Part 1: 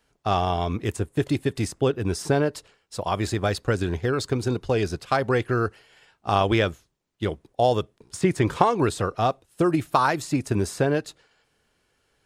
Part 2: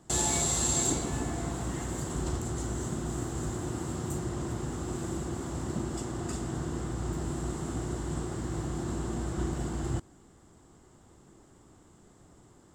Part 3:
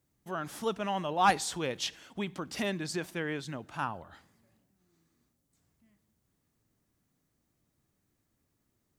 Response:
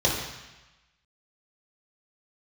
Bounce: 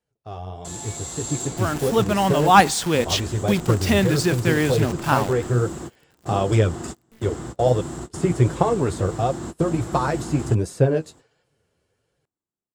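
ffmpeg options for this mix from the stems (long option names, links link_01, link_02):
-filter_complex "[0:a]equalizer=frequency=125:width_type=o:width=1:gain=7,equalizer=frequency=500:width_type=o:width=1:gain=9,equalizer=frequency=8000:width_type=o:width=1:gain=4,flanger=delay=5.5:depth=7.5:regen=27:speed=1.4:shape=sinusoidal,equalizer=frequency=69:width=0.56:gain=14,volume=-15.5dB,asplit=2[link_01][link_02];[1:a]adelay=550,volume=-8.5dB[link_03];[2:a]acrusher=bits=8:dc=4:mix=0:aa=0.000001,lowshelf=frequency=220:gain=10.5,adelay=1300,volume=1dB[link_04];[link_02]apad=whole_len=586386[link_05];[link_03][link_05]sidechaingate=range=-33dB:threshold=-57dB:ratio=16:detection=peak[link_06];[link_01][link_06][link_04]amix=inputs=3:normalize=0,lowshelf=frequency=85:gain=-10.5,dynaudnorm=framelen=160:gausssize=17:maxgain=13dB"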